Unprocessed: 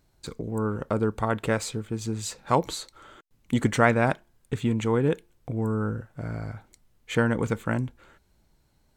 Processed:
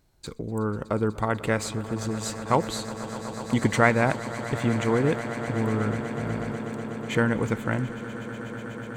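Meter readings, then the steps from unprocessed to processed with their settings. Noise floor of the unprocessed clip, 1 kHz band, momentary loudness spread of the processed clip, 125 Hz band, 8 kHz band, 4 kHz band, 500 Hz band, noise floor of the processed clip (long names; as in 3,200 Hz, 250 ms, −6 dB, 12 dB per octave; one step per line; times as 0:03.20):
−66 dBFS, +1.0 dB, 12 LU, +0.5 dB, +1.0 dB, +1.0 dB, +1.0 dB, −39 dBFS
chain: echo that builds up and dies away 123 ms, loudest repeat 8, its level −17.5 dB
dynamic equaliser 2,000 Hz, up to +5 dB, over −49 dBFS, Q 5.5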